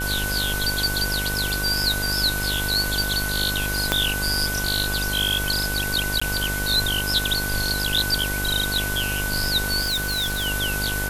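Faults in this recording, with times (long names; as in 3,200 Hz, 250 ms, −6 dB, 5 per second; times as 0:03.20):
mains buzz 50 Hz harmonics 23 −29 dBFS
surface crackle 21 per second −32 dBFS
whistle 1,500 Hz −27 dBFS
0:03.92: click −3 dBFS
0:06.20–0:06.21: drop-out 15 ms
0:09.81–0:10.47: clipping −20.5 dBFS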